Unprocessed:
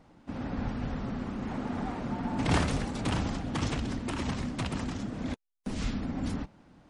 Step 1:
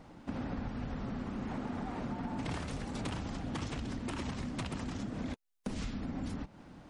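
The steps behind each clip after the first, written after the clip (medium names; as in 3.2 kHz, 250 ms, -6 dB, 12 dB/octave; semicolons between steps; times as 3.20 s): compression 12:1, threshold -39 dBFS, peak gain reduction 18.5 dB; trim +4.5 dB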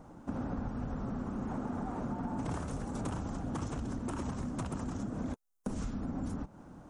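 high-order bell 3 kHz -11 dB; trim +1.5 dB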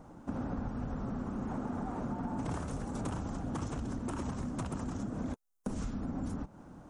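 no audible change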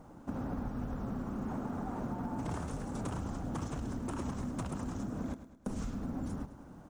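companded quantiser 8-bit; on a send: feedback delay 105 ms, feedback 48%, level -12.5 dB; on the sum: trim -1 dB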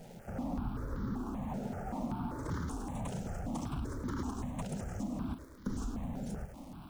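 jump at every zero crossing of -50.5 dBFS; stepped phaser 5.2 Hz 300–2600 Hz; trim +2 dB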